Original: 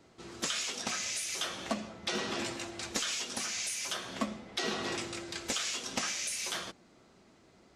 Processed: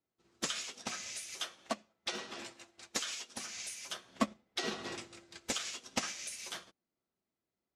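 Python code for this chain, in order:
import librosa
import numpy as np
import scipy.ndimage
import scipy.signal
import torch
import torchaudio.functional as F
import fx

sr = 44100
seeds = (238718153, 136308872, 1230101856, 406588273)

y = fx.low_shelf(x, sr, hz=280.0, db=-8.0, at=(1.38, 3.35))
y = fx.upward_expand(y, sr, threshold_db=-51.0, expansion=2.5)
y = F.gain(torch.from_numpy(y), 3.5).numpy()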